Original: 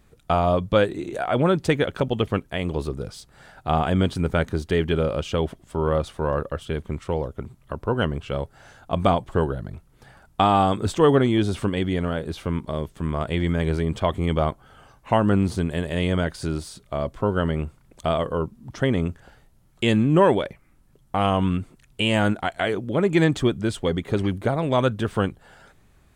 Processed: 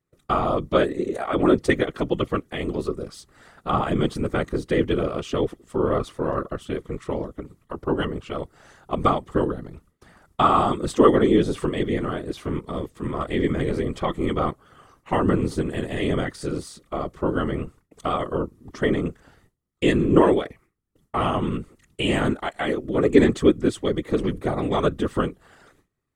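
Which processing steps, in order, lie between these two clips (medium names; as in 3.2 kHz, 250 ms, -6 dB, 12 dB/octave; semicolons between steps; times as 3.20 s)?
gate with hold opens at -43 dBFS; peaking EQ 7.9 kHz +3.5 dB 1.7 oct; small resonant body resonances 350/1200/1900 Hz, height 11 dB, ringing for 40 ms; whisper effect; trim -4 dB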